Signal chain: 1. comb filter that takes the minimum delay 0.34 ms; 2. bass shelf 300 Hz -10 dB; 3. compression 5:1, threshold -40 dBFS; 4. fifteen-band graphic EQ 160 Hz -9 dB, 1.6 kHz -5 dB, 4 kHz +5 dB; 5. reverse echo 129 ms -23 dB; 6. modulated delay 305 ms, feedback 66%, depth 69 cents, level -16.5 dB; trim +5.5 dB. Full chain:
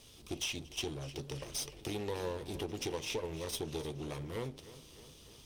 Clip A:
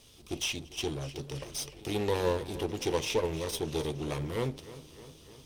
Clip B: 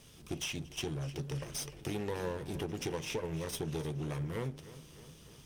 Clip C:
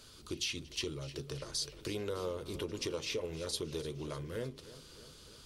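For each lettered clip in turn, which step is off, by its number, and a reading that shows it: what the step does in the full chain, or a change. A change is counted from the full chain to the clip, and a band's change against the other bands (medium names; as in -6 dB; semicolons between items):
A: 3, mean gain reduction 4.0 dB; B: 4, crest factor change -2.0 dB; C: 1, 1 kHz band -3.0 dB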